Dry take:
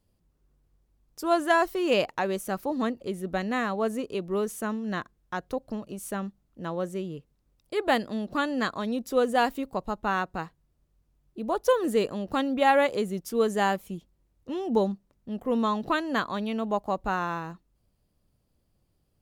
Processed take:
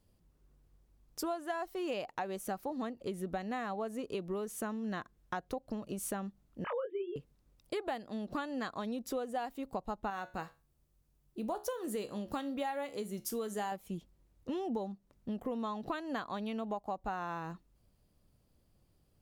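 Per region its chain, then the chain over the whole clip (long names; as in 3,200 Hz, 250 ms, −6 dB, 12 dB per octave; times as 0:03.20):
0:06.64–0:07.16: three sine waves on the formant tracks + double-tracking delay 23 ms −5 dB
0:10.10–0:13.72: high-shelf EQ 6,500 Hz +9 dB + tuned comb filter 70 Hz, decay 0.28 s
whole clip: dynamic equaliser 760 Hz, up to +7 dB, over −42 dBFS, Q 4.2; downward compressor 12 to 1, threshold −35 dBFS; level +1 dB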